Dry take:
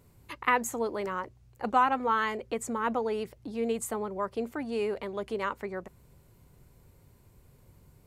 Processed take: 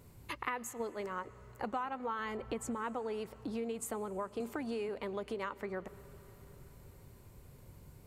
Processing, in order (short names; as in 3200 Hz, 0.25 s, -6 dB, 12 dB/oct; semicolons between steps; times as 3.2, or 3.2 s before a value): 0.73–1.25 gate -32 dBFS, range -10 dB; 2.19–2.75 low shelf 200 Hz +9.5 dB; compressor 5:1, threshold -39 dBFS, peak gain reduction 18 dB; reverb RT60 4.7 s, pre-delay 70 ms, DRR 17.5 dB; 4.4–4.89 three-band squash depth 70%; gain +2.5 dB